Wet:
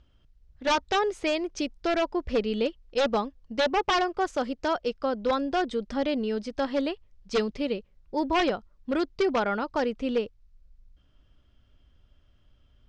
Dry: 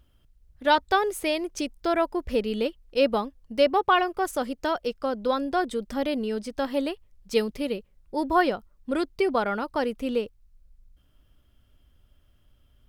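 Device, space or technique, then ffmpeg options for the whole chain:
synthesiser wavefolder: -af "aeval=exprs='0.133*(abs(mod(val(0)/0.133+3,4)-2)-1)':c=same,lowpass=f=6200:w=0.5412,lowpass=f=6200:w=1.3066"

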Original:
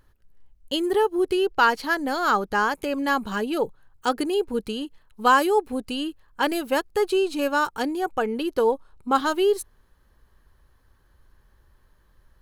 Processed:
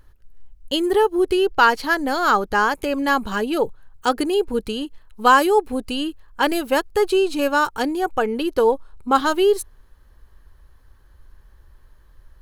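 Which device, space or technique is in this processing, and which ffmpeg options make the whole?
low shelf boost with a cut just above: -af "lowshelf=f=81:g=7.5,equalizer=f=180:t=o:w=0.83:g=-3.5,volume=1.58"

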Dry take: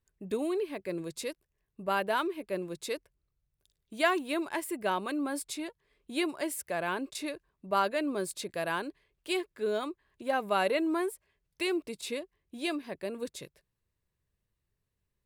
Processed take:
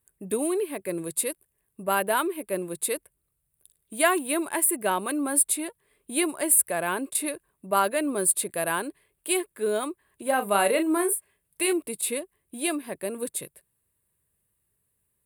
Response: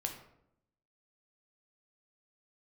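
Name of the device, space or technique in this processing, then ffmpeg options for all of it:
budget condenser microphone: -filter_complex "[0:a]asettb=1/sr,asplit=3[s0][s1][s2];[s0]atrim=end=10.224[s3];[s1]atrim=start=10.22:end=11.73,asetpts=PTS-STARTPTS,afade=t=in:d=0.004:c=qsin,afade=t=out:st=1.506:d=0.004:c=qsin,asplit=2[s4][s5];[s5]adelay=35,volume=0.376[s6];[s4][s6]amix=inputs=2:normalize=0,atrim=end_sample=66591[s7];[s2]atrim=start=11.726[s8];[s3][s7]acrossfade=d=0.004:c1=hsin:c2=qsin[s9];[s9][s8]acrossfade=d=0.004:c1=qsin:c2=hsin,highpass=f=100:p=1,highshelf=f=7500:t=q:w=3:g=10,volume=1.78"

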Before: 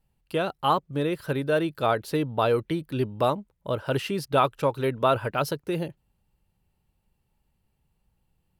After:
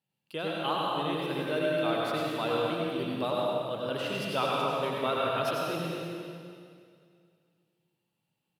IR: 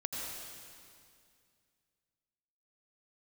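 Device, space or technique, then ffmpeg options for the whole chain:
PA in a hall: -filter_complex "[0:a]highpass=f=140:w=0.5412,highpass=f=140:w=1.3066,equalizer=f=3300:t=o:w=1.2:g=7,aecho=1:1:101:0.447[s0];[1:a]atrim=start_sample=2205[s1];[s0][s1]afir=irnorm=-1:irlink=0,volume=0.376"

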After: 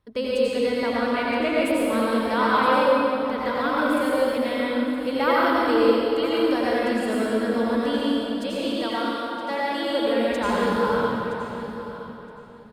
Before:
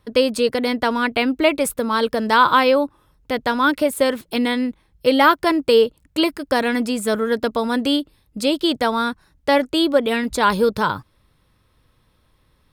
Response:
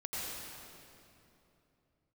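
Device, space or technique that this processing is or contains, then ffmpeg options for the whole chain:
swimming-pool hall: -filter_complex "[0:a]asettb=1/sr,asplit=3[s0][s1][s2];[s0]atrim=end=8.474[s3];[s1]atrim=start=8.47:end=9.9,asetpts=PTS-STARTPTS,afade=t=in:d=0.004:c=qsin,afade=t=out:st=1.426:d=0.004:c=qsin,highpass=f=630:p=1[s4];[s2]atrim=start=9.896[s5];[s3][s4]acrossfade=d=0.004:c1=hsin:c2=qsin[s6];[s6][s5]acrossfade=d=0.004:c1=qsin:c2=hsin[s7];[1:a]atrim=start_sample=2205[s8];[s7][s8]afir=irnorm=-1:irlink=0,highshelf=f=3800:g=-6,aecho=1:1:969|1938:0.2|0.0359,volume=0.473"

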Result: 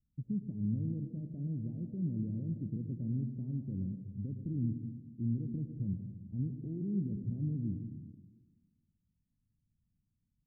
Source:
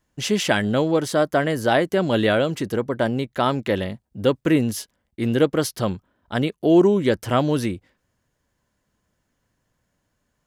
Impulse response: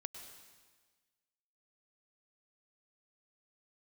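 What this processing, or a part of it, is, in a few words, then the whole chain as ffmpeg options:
club heard from the street: -filter_complex "[0:a]alimiter=limit=0.178:level=0:latency=1:release=29,lowpass=f=210:w=0.5412,lowpass=f=210:w=1.3066[s0];[1:a]atrim=start_sample=2205[s1];[s0][s1]afir=irnorm=-1:irlink=0,volume=0.794"

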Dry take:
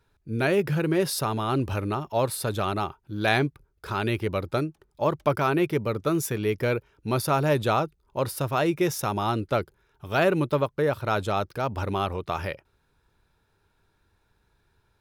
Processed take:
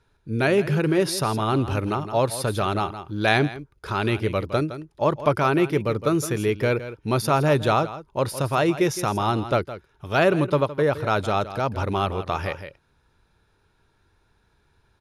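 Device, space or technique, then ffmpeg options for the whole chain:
ducked delay: -filter_complex "[0:a]lowpass=f=11000:w=0.5412,lowpass=f=11000:w=1.3066,bandreject=f=7900:w=8.8,asplit=3[s0][s1][s2];[s1]adelay=164,volume=0.501[s3];[s2]apad=whole_len=669078[s4];[s3][s4]sidechaincompress=threshold=0.0398:ratio=5:attack=16:release=969[s5];[s0][s5]amix=inputs=2:normalize=0,volume=1.41"

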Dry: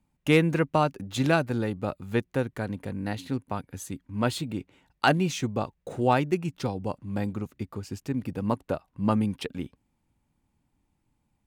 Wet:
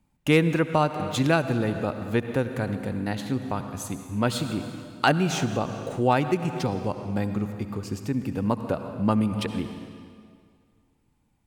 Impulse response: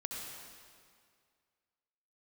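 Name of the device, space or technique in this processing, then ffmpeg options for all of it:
ducked reverb: -filter_complex "[0:a]asplit=3[s0][s1][s2];[1:a]atrim=start_sample=2205[s3];[s1][s3]afir=irnorm=-1:irlink=0[s4];[s2]apad=whole_len=505501[s5];[s4][s5]sidechaincompress=threshold=0.0398:ratio=8:attack=11:release=196,volume=0.75[s6];[s0][s6]amix=inputs=2:normalize=0"

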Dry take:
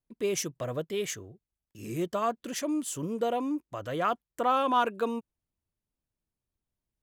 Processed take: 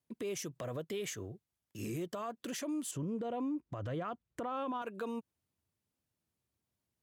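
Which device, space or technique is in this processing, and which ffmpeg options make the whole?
podcast mastering chain: -filter_complex "[0:a]asettb=1/sr,asplit=3[s0][s1][s2];[s0]atrim=end=2.914[s3];[s1]atrim=start=2.91:end=4.82,asetpts=PTS-STARTPTS,afade=t=in:d=0.004:c=qsin,afade=t=out:st=1.906:d=0.004:c=qsin,aemphasis=mode=reproduction:type=bsi[s4];[s2]atrim=start=4.816[s5];[s3][s4]acrossfade=d=0.004:c1=hsin:c2=qsin[s6];[s6][s5]acrossfade=d=0.004:c1=qsin:c2=hsin,highpass=f=73:w=0.5412,highpass=f=73:w=1.3066,acompressor=threshold=0.0224:ratio=4,alimiter=level_in=3.16:limit=0.0631:level=0:latency=1:release=106,volume=0.316,volume=1.5" -ar 44100 -c:a libmp3lame -b:a 112k

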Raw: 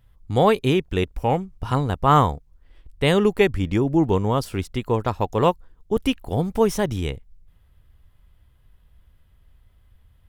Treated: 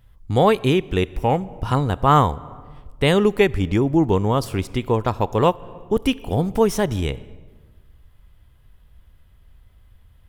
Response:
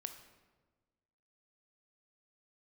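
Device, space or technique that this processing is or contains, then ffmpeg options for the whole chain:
compressed reverb return: -filter_complex "[0:a]asplit=2[s0][s1];[1:a]atrim=start_sample=2205[s2];[s1][s2]afir=irnorm=-1:irlink=0,acompressor=threshold=0.0398:ratio=6,volume=0.891[s3];[s0][s3]amix=inputs=2:normalize=0"

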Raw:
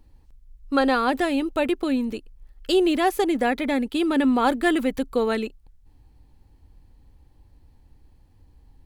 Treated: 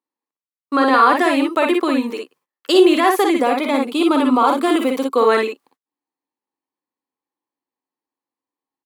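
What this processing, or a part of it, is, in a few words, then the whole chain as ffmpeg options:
laptop speaker: -filter_complex "[0:a]highpass=f=270:w=0.5412,highpass=f=270:w=1.3066,equalizer=f=1100:t=o:w=0.42:g=11.5,equalizer=f=2000:t=o:w=0.45:g=4,alimiter=limit=0.266:level=0:latency=1:release=27,agate=range=0.0282:threshold=0.00126:ratio=16:detection=peak,asettb=1/sr,asplit=3[s0][s1][s2];[s0]atrim=end=3.364[s3];[s1]atrim=start=3.36:end=5.17,asetpts=PTS-STARTPTS,afade=t=in:d=0.004:c=qsin,afade=t=out:st=1.806:d=0.004:c=qsin,equalizer=f=1800:t=o:w=0.34:g=-14.5[s4];[s2]atrim=start=5.166[s5];[s3][s4]acrossfade=d=0.004:c1=hsin:c2=qsin[s6];[s6][s5]acrossfade=d=0.004:c1=qsin:c2=hsin,aecho=1:1:48|59:0.422|0.596,volume=1.88"

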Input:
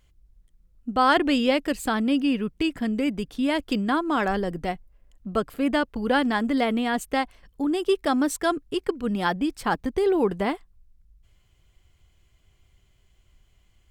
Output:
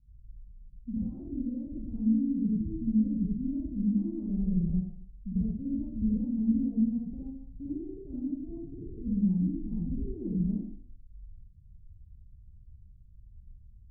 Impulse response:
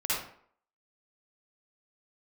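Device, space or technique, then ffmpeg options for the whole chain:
club heard from the street: -filter_complex "[0:a]alimiter=limit=0.112:level=0:latency=1:release=89,lowpass=f=190:w=0.5412,lowpass=f=190:w=1.3066[s0];[1:a]atrim=start_sample=2205[s1];[s0][s1]afir=irnorm=-1:irlink=0,volume=1.26"

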